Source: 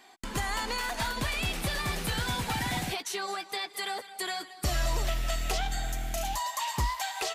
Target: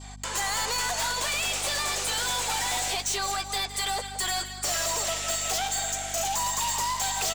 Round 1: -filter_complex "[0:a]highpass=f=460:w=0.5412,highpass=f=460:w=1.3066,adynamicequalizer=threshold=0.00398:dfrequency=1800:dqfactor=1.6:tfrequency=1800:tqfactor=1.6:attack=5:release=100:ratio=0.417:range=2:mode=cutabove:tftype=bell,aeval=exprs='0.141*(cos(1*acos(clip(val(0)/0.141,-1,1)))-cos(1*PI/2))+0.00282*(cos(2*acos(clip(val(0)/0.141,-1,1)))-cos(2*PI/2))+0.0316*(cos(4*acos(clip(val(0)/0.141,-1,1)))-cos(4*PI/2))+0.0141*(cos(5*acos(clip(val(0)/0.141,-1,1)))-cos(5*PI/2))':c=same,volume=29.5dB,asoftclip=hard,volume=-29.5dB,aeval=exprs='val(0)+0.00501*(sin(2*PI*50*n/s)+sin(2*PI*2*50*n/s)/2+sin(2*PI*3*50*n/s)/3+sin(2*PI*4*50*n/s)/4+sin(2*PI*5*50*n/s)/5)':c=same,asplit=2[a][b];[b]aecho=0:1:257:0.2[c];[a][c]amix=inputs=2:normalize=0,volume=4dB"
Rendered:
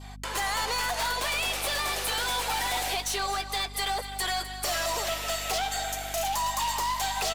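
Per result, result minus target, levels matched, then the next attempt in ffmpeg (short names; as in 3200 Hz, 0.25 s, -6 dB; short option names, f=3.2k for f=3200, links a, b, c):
echo 88 ms late; 8000 Hz band -4.5 dB
-filter_complex "[0:a]highpass=f=460:w=0.5412,highpass=f=460:w=1.3066,adynamicequalizer=threshold=0.00398:dfrequency=1800:dqfactor=1.6:tfrequency=1800:tqfactor=1.6:attack=5:release=100:ratio=0.417:range=2:mode=cutabove:tftype=bell,aeval=exprs='0.141*(cos(1*acos(clip(val(0)/0.141,-1,1)))-cos(1*PI/2))+0.00282*(cos(2*acos(clip(val(0)/0.141,-1,1)))-cos(2*PI/2))+0.0316*(cos(4*acos(clip(val(0)/0.141,-1,1)))-cos(4*PI/2))+0.0141*(cos(5*acos(clip(val(0)/0.141,-1,1)))-cos(5*PI/2))':c=same,volume=29.5dB,asoftclip=hard,volume=-29.5dB,aeval=exprs='val(0)+0.00501*(sin(2*PI*50*n/s)+sin(2*PI*2*50*n/s)/2+sin(2*PI*3*50*n/s)/3+sin(2*PI*4*50*n/s)/4+sin(2*PI*5*50*n/s)/5)':c=same,asplit=2[a][b];[b]aecho=0:1:169:0.2[c];[a][c]amix=inputs=2:normalize=0,volume=4dB"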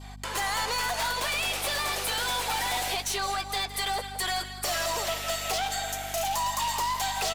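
8000 Hz band -4.5 dB
-filter_complex "[0:a]highpass=f=460:w=0.5412,highpass=f=460:w=1.3066,adynamicequalizer=threshold=0.00398:dfrequency=1800:dqfactor=1.6:tfrequency=1800:tqfactor=1.6:attack=5:release=100:ratio=0.417:range=2:mode=cutabove:tftype=bell,lowpass=f=7.5k:t=q:w=3.5,aeval=exprs='0.141*(cos(1*acos(clip(val(0)/0.141,-1,1)))-cos(1*PI/2))+0.00282*(cos(2*acos(clip(val(0)/0.141,-1,1)))-cos(2*PI/2))+0.0316*(cos(4*acos(clip(val(0)/0.141,-1,1)))-cos(4*PI/2))+0.0141*(cos(5*acos(clip(val(0)/0.141,-1,1)))-cos(5*PI/2))':c=same,volume=29.5dB,asoftclip=hard,volume=-29.5dB,aeval=exprs='val(0)+0.00501*(sin(2*PI*50*n/s)+sin(2*PI*2*50*n/s)/2+sin(2*PI*3*50*n/s)/3+sin(2*PI*4*50*n/s)/4+sin(2*PI*5*50*n/s)/5)':c=same,asplit=2[a][b];[b]aecho=0:1:169:0.2[c];[a][c]amix=inputs=2:normalize=0,volume=4dB"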